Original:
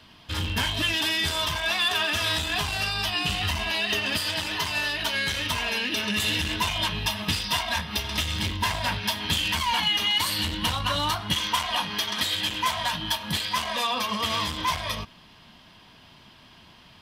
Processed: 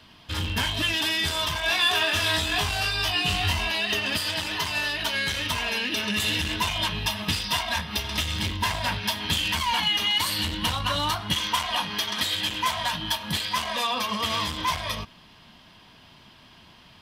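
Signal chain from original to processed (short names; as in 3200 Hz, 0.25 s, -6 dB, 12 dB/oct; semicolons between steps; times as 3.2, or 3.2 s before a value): 1.61–3.68 doubler 22 ms -3 dB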